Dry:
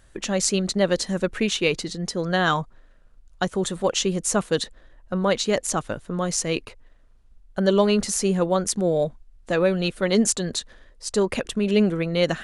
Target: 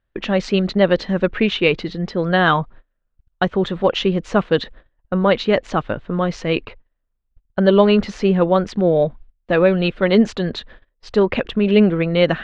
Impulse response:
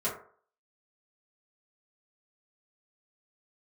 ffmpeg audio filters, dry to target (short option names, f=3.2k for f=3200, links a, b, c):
-af "agate=range=-25dB:threshold=-44dB:ratio=16:detection=peak,lowpass=f=3.4k:w=0.5412,lowpass=f=3.4k:w=1.3066,volume=6dB"